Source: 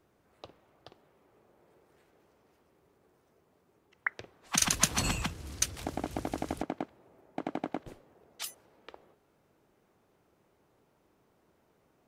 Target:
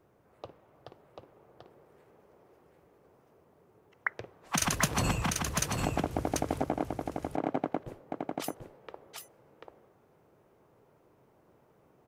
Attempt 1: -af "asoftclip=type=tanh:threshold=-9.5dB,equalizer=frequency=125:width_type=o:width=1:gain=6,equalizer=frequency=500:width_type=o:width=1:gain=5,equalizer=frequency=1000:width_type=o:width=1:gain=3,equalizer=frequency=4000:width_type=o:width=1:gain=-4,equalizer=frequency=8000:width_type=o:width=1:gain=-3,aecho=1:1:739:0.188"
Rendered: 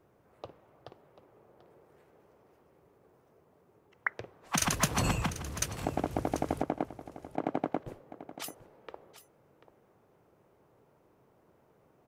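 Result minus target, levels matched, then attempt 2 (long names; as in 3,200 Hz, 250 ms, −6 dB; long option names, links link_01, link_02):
echo-to-direct −10.5 dB
-af "asoftclip=type=tanh:threshold=-9.5dB,equalizer=frequency=125:width_type=o:width=1:gain=6,equalizer=frequency=500:width_type=o:width=1:gain=5,equalizer=frequency=1000:width_type=o:width=1:gain=3,equalizer=frequency=4000:width_type=o:width=1:gain=-4,equalizer=frequency=8000:width_type=o:width=1:gain=-3,aecho=1:1:739:0.631"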